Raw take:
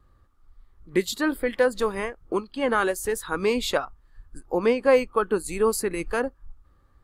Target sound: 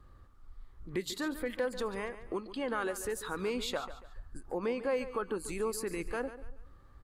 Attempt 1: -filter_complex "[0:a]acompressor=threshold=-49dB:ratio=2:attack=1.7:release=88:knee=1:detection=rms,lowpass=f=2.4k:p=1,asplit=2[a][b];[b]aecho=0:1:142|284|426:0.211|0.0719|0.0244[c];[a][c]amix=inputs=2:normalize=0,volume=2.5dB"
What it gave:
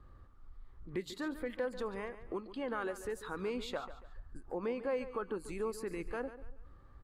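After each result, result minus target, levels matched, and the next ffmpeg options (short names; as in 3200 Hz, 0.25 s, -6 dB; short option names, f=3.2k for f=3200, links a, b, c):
8000 Hz band -7.5 dB; compressor: peak gain reduction +3 dB
-filter_complex "[0:a]acompressor=threshold=-49dB:ratio=2:attack=1.7:release=88:knee=1:detection=rms,lowpass=f=9k:p=1,asplit=2[a][b];[b]aecho=0:1:142|284|426:0.211|0.0719|0.0244[c];[a][c]amix=inputs=2:normalize=0,volume=2.5dB"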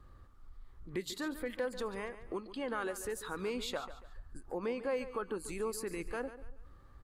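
compressor: peak gain reduction +3 dB
-filter_complex "[0:a]acompressor=threshold=-43dB:ratio=2:attack=1.7:release=88:knee=1:detection=rms,lowpass=f=9k:p=1,asplit=2[a][b];[b]aecho=0:1:142|284|426:0.211|0.0719|0.0244[c];[a][c]amix=inputs=2:normalize=0,volume=2.5dB"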